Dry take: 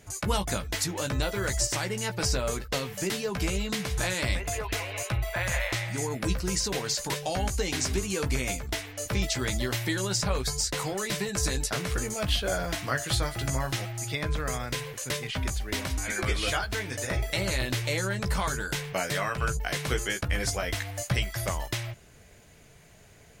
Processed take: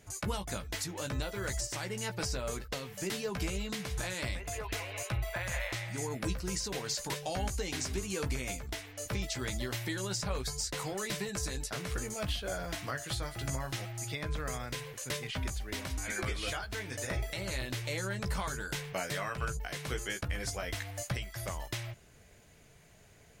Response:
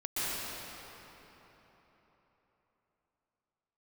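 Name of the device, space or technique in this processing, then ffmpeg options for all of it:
limiter into clipper: -af "alimiter=limit=-18.5dB:level=0:latency=1:release=447,asoftclip=type=hard:threshold=-19.5dB,volume=-5dB"

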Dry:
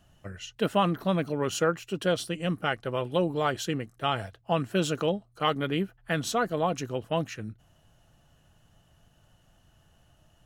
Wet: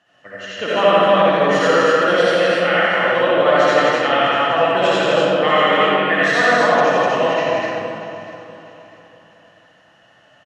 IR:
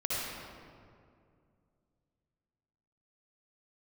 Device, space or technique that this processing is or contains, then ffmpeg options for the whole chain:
station announcement: -filter_complex "[0:a]asettb=1/sr,asplit=3[a][b][c];[a]atrim=end=2.514[d];[b]atrim=start=2.51:end=2.99,asetpts=PTS-STARTPTS,afade=t=in:d=0.004:c=qsin,afade=t=out:st=0.476:d=0.004:c=qsin,highpass=490[e];[c]atrim=start=2.986[f];[d][e]acrossfade=d=0.004:c1=hsin:c2=qsin[g];[g][f]acrossfade=d=0.004:c1=qsin:c2=hsin,highpass=360,lowpass=4.5k,equalizer=f=1.8k:t=o:w=0.25:g=11,aecho=1:1:87.46|250.7:0.708|0.794[h];[1:a]atrim=start_sample=2205[i];[h][i]afir=irnorm=-1:irlink=0,equalizer=f=370:t=o:w=0.37:g=-4,aecho=1:1:644|1288|1932:0.168|0.0571|0.0194,volume=5dB"

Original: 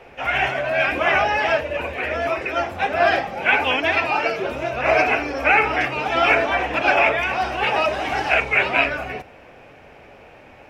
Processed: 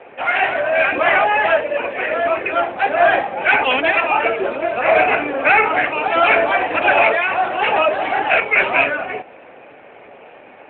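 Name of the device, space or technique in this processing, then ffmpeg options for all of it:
telephone: -af "highpass=260,lowpass=3.1k,asoftclip=type=tanh:threshold=-8.5dB,volume=6dB" -ar 8000 -c:a libopencore_amrnb -b:a 12200

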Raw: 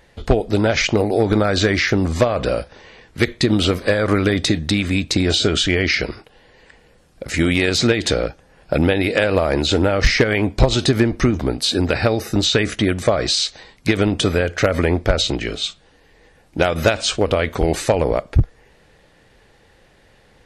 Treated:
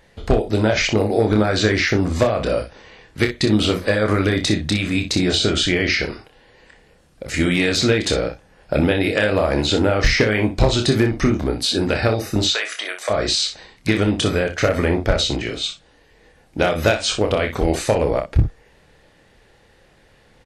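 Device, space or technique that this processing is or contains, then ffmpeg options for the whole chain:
slapback doubling: -filter_complex "[0:a]asplit=3[a][b][c];[a]afade=t=out:st=12.52:d=0.02[d];[b]highpass=f=610:w=0.5412,highpass=f=610:w=1.3066,afade=t=in:st=12.52:d=0.02,afade=t=out:st=13.09:d=0.02[e];[c]afade=t=in:st=13.09:d=0.02[f];[d][e][f]amix=inputs=3:normalize=0,asplit=3[g][h][i];[h]adelay=28,volume=-6dB[j];[i]adelay=61,volume=-9.5dB[k];[g][j][k]amix=inputs=3:normalize=0,volume=-2dB"

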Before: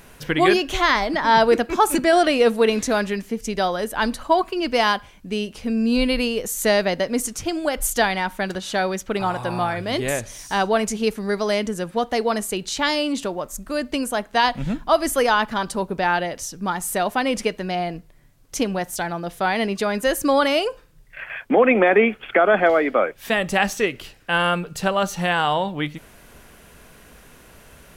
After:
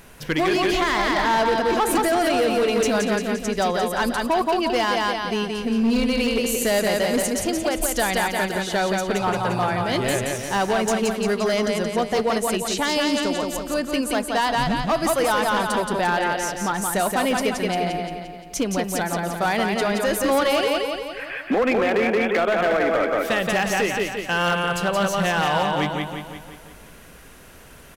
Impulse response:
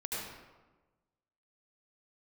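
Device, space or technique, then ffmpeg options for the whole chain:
limiter into clipper: -af "aecho=1:1:174|348|522|696|870|1044|1218:0.631|0.334|0.177|0.0939|0.0498|0.0264|0.014,alimiter=limit=-9.5dB:level=0:latency=1:release=84,asoftclip=type=hard:threshold=-15.5dB"

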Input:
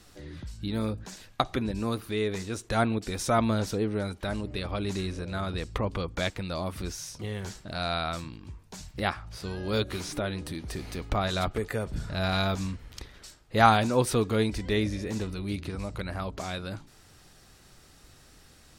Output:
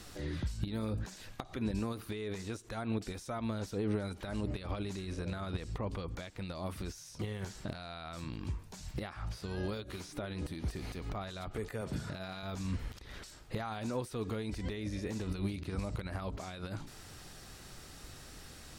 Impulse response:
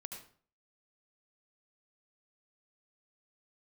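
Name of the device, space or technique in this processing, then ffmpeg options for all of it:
de-esser from a sidechain: -filter_complex "[0:a]asettb=1/sr,asplit=3[a][b][c];[a]atrim=end=11.814[d];[b]atrim=start=11.81:end=12.43,asetpts=PTS-STARTPTS,afade=t=in:d=0.004:c=qsin,afade=t=out:st=0.616:d=0.004:c=qsin,highpass=120[e];[c]atrim=start=12.426[f];[d][e]acrossfade=d=0.004:c1=hsin:c2=qsin[g];[g][f]acrossfade=d=0.004:c1=qsin:c2=hsin,asplit=2[h][i];[i]highpass=f=6k:p=1,apad=whole_len=828477[j];[h][j]sidechaincompress=threshold=-56dB:ratio=6:attack=0.79:release=76,volume=5.5dB"

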